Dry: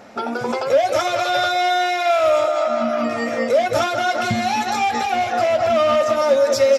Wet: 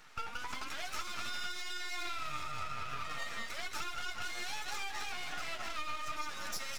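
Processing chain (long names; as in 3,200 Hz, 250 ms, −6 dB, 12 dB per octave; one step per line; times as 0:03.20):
Butterworth high-pass 990 Hz 36 dB per octave
downward compressor, threshold −28 dBFS, peak gain reduction 9.5 dB
half-wave rectification
flanger 1.3 Hz, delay 6.1 ms, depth 3.8 ms, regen +51%
level −1 dB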